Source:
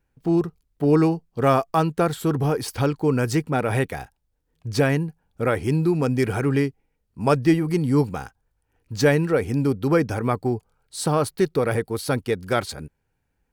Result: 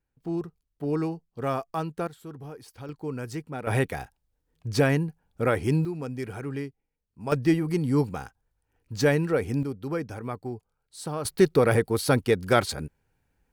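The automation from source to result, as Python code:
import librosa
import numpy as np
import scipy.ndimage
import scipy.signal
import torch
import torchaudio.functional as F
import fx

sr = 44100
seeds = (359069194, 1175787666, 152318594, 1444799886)

y = fx.gain(x, sr, db=fx.steps((0.0, -10.0), (2.07, -19.0), (2.89, -12.5), (3.67, -2.0), (5.85, -12.0), (7.32, -4.0), (9.63, -11.0), (11.25, 1.5)))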